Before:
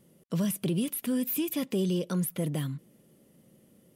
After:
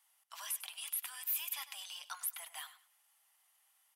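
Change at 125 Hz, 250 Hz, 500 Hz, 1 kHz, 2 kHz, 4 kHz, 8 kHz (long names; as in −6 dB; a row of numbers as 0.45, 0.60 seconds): below −40 dB, below −40 dB, −33.5 dB, −3.0 dB, −2.5 dB, −2.5 dB, −2.5 dB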